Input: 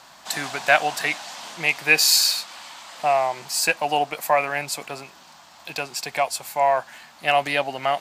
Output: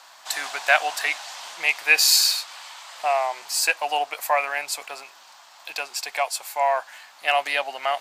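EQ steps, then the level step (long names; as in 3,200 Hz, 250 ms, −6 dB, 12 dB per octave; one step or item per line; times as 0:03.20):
high-pass filter 670 Hz 12 dB per octave
0.0 dB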